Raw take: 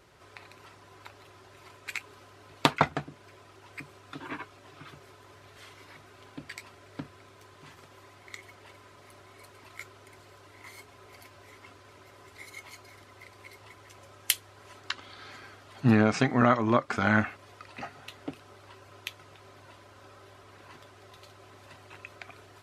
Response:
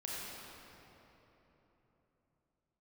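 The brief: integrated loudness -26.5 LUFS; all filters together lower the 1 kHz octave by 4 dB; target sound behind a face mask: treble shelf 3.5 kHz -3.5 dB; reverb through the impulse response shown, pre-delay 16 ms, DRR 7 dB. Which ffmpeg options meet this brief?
-filter_complex "[0:a]equalizer=f=1000:t=o:g=-5,asplit=2[s0][s1];[1:a]atrim=start_sample=2205,adelay=16[s2];[s1][s2]afir=irnorm=-1:irlink=0,volume=0.376[s3];[s0][s3]amix=inputs=2:normalize=0,highshelf=f=3500:g=-3.5,volume=1.41"

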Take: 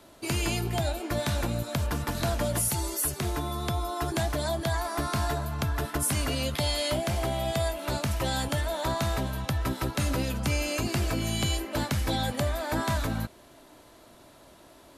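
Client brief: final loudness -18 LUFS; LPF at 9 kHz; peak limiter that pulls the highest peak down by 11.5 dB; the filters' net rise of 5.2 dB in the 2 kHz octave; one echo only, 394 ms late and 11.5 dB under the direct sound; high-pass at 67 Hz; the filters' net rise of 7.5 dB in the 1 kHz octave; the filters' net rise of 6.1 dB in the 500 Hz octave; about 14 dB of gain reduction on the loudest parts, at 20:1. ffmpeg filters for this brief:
-af "highpass=67,lowpass=9000,equalizer=f=500:t=o:g=5,equalizer=f=1000:t=o:g=7,equalizer=f=2000:t=o:g=4,acompressor=threshold=0.02:ratio=20,alimiter=level_in=2.82:limit=0.0631:level=0:latency=1,volume=0.355,aecho=1:1:394:0.266,volume=15"

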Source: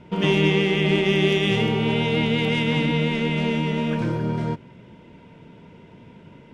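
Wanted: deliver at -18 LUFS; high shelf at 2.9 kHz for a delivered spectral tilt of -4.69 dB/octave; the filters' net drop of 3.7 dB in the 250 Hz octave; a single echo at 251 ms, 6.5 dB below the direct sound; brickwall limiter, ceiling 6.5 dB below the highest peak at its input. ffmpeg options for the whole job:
-af "equalizer=f=250:t=o:g=-5.5,highshelf=f=2900:g=-7,alimiter=limit=0.158:level=0:latency=1,aecho=1:1:251:0.473,volume=2.24"

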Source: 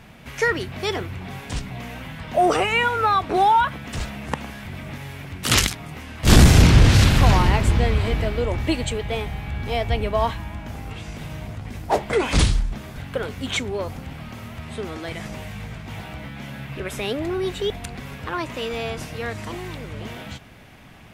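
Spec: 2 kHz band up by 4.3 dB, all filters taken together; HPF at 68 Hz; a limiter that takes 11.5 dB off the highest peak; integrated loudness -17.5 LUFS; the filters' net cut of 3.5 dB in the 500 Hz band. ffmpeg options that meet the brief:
-af "highpass=68,equalizer=f=500:t=o:g=-5,equalizer=f=2000:t=o:g=5.5,volume=2.51,alimiter=limit=0.668:level=0:latency=1"

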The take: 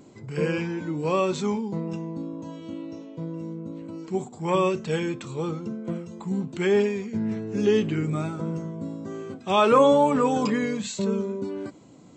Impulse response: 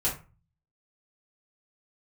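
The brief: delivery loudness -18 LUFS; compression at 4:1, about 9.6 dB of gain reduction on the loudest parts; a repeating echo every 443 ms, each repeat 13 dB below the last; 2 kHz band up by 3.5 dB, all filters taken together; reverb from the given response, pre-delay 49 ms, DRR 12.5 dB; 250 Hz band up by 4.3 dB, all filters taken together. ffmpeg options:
-filter_complex "[0:a]equalizer=f=250:t=o:g=5.5,equalizer=f=2000:t=o:g=4.5,acompressor=threshold=0.0708:ratio=4,aecho=1:1:443|886|1329:0.224|0.0493|0.0108,asplit=2[s0][s1];[1:a]atrim=start_sample=2205,adelay=49[s2];[s1][s2]afir=irnorm=-1:irlink=0,volume=0.0944[s3];[s0][s3]amix=inputs=2:normalize=0,volume=3.16"

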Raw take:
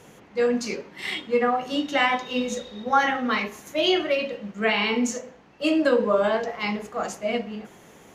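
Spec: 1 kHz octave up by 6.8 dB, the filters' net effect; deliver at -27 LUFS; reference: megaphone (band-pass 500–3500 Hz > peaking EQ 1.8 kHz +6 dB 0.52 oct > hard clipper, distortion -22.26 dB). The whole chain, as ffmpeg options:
-af "highpass=500,lowpass=3500,equalizer=f=1000:t=o:g=9,equalizer=f=1800:t=o:w=0.52:g=6,asoftclip=type=hard:threshold=0.473,volume=0.531"

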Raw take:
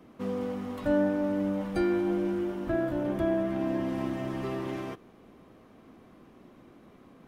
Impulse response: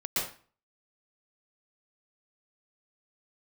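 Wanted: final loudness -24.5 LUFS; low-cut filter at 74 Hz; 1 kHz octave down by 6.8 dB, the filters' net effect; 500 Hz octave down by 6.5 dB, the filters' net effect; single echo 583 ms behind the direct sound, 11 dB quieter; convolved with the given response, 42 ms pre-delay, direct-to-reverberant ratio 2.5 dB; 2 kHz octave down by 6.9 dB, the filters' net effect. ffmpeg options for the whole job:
-filter_complex "[0:a]highpass=74,equalizer=f=500:t=o:g=-8.5,equalizer=f=1000:t=o:g=-4,equalizer=f=2000:t=o:g=-7,aecho=1:1:583:0.282,asplit=2[s0][s1];[1:a]atrim=start_sample=2205,adelay=42[s2];[s1][s2]afir=irnorm=-1:irlink=0,volume=0.316[s3];[s0][s3]amix=inputs=2:normalize=0,volume=2.51"

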